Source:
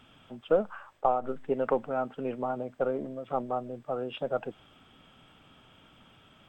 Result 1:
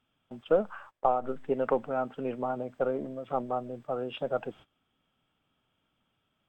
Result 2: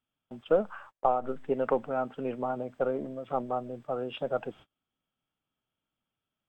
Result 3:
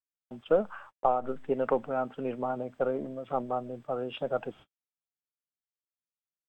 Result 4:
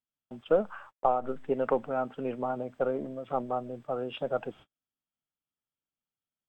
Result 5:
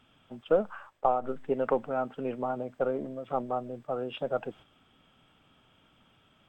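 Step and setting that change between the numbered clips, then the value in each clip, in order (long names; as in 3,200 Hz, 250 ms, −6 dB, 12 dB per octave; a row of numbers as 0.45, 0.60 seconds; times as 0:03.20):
noise gate, range: −19, −31, −56, −43, −6 decibels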